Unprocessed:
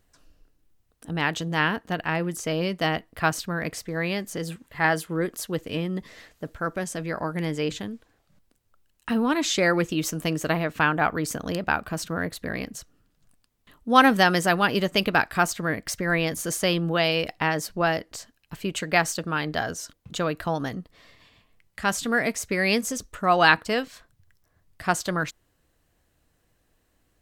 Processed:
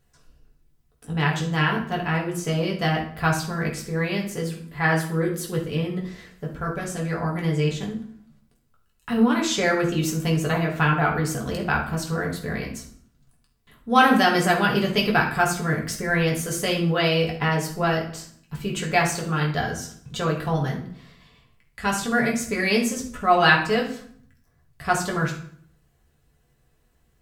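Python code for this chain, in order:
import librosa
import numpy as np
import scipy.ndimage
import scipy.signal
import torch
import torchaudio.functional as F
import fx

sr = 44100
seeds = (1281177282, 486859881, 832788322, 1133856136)

y = fx.low_shelf(x, sr, hz=79.0, db=7.0)
y = fx.rev_fdn(y, sr, rt60_s=0.58, lf_ratio=1.4, hf_ratio=0.8, size_ms=41.0, drr_db=-2.5)
y = y * 10.0 ** (-3.5 / 20.0)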